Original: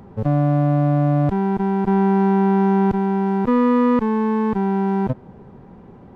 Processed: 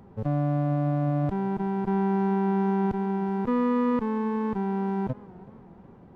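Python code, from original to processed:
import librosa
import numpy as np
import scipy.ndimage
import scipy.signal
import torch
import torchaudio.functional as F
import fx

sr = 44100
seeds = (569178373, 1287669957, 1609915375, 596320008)

y = fx.echo_warbled(x, sr, ms=370, feedback_pct=49, rate_hz=2.8, cents=120, wet_db=-21.0)
y = F.gain(torch.from_numpy(y), -8.0).numpy()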